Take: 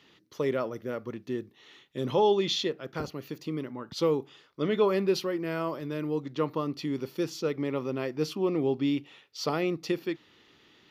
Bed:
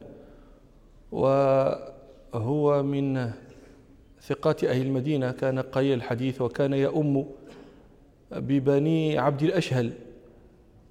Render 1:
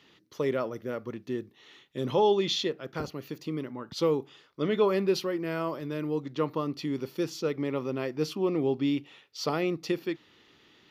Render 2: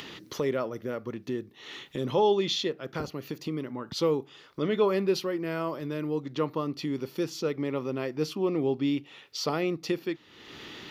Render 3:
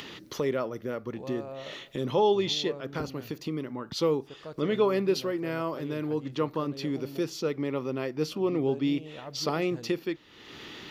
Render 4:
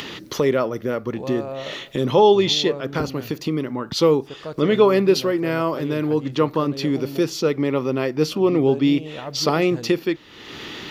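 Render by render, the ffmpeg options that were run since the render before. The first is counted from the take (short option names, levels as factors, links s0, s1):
-af anull
-af "acompressor=mode=upward:threshold=0.0355:ratio=2.5"
-filter_complex "[1:a]volume=0.112[s0];[0:a][s0]amix=inputs=2:normalize=0"
-af "volume=2.99"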